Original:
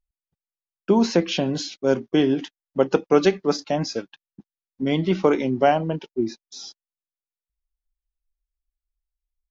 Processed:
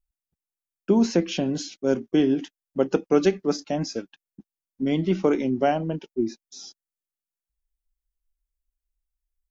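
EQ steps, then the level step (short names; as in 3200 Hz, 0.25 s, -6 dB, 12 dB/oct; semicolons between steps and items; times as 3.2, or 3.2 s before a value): graphic EQ 125/500/1000/2000/4000 Hz -6/-4/-8/-4/-8 dB; +2.0 dB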